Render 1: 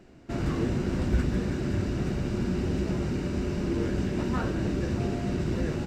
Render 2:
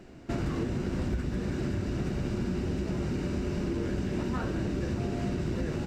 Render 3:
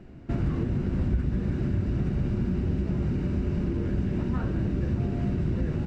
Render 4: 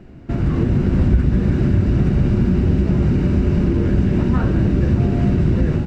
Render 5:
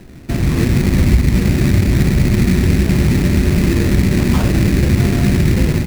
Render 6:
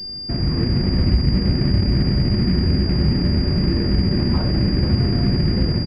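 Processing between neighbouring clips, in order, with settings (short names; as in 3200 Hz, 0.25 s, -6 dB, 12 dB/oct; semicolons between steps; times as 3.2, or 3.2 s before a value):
compressor, threshold -31 dBFS, peak gain reduction 12 dB; gain +3.5 dB
tone controls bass +9 dB, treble -10 dB; gain -2.5 dB
AGC gain up to 5.5 dB; gain +5.5 dB
sample-rate reducer 2200 Hz, jitter 20%; gain +3 dB
air absorption 340 m; echo 0.498 s -9.5 dB; pulse-width modulation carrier 4800 Hz; gain -5 dB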